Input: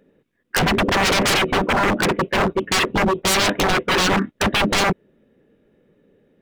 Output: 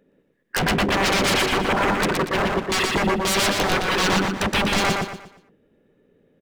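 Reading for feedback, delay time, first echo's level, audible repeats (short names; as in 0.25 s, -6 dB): 35%, 0.119 s, -3.0 dB, 4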